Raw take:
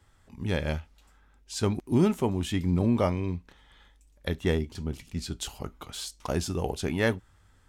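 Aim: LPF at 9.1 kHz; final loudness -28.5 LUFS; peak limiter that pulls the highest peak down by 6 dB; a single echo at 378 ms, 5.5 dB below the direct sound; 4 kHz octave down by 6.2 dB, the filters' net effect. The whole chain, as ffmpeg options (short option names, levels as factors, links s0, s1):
-af "lowpass=9100,equalizer=f=4000:t=o:g=-8,alimiter=limit=0.141:level=0:latency=1,aecho=1:1:378:0.531,volume=1.33"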